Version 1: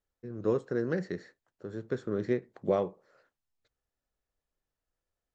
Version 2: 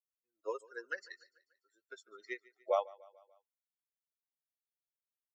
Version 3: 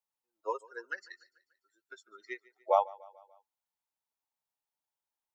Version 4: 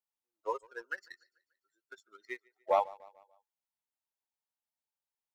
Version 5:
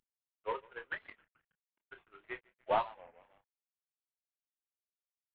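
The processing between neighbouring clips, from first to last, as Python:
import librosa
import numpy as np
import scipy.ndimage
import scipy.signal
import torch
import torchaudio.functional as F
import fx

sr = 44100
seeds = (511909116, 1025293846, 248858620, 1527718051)

y1 = fx.bin_expand(x, sr, power=3.0)
y1 = scipy.signal.sosfilt(scipy.signal.cheby2(4, 60, 180.0, 'highpass', fs=sr, output='sos'), y1)
y1 = fx.echo_feedback(y1, sr, ms=146, feedback_pct=55, wet_db=-22.5)
y1 = y1 * 10.0 ** (5.0 / 20.0)
y2 = fx.spec_box(y1, sr, start_s=0.91, length_s=1.47, low_hz=390.0, high_hz=1200.0, gain_db=-8)
y2 = fx.peak_eq(y2, sr, hz=870.0, db=15.0, octaves=0.54)
y3 = fx.leveller(y2, sr, passes=1)
y3 = y3 * 10.0 ** (-4.0 / 20.0)
y4 = fx.cvsd(y3, sr, bps=16000)
y4 = fx.chorus_voices(y4, sr, voices=6, hz=0.67, base_ms=28, depth_ms=4.9, mix_pct=30)
y4 = fx.record_warp(y4, sr, rpm=33.33, depth_cents=250.0)
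y4 = y4 * 10.0 ** (1.0 / 20.0)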